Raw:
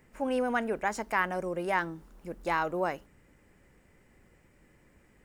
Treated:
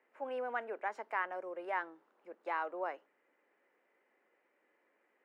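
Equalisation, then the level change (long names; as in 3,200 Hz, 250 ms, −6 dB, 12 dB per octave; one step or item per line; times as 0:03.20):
high-pass filter 250 Hz 24 dB per octave
three-way crossover with the lows and the highs turned down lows −18 dB, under 390 Hz, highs −13 dB, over 3,500 Hz
high-shelf EQ 3,900 Hz −10.5 dB
−6.0 dB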